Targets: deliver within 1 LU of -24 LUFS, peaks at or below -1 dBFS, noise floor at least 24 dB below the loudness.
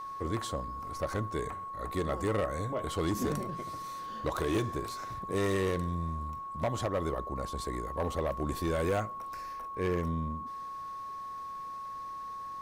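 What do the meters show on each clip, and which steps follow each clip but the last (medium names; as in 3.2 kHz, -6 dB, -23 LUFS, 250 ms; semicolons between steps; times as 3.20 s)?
clipped samples 1.3%; clipping level -24.5 dBFS; steady tone 1.1 kHz; tone level -38 dBFS; loudness -34.5 LUFS; peak level -24.5 dBFS; loudness target -24.0 LUFS
-> clip repair -24.5 dBFS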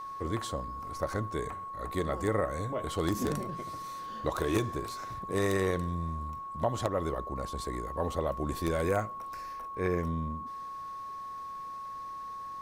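clipped samples 0.0%; steady tone 1.1 kHz; tone level -38 dBFS
-> band-stop 1.1 kHz, Q 30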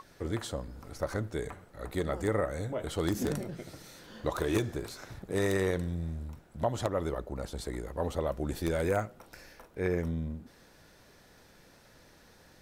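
steady tone not found; loudness -34.0 LUFS; peak level -15.0 dBFS; loudness target -24.0 LUFS
-> trim +10 dB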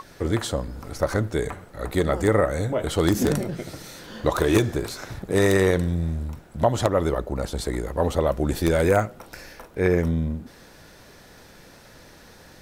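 loudness -24.0 LUFS; peak level -5.0 dBFS; noise floor -49 dBFS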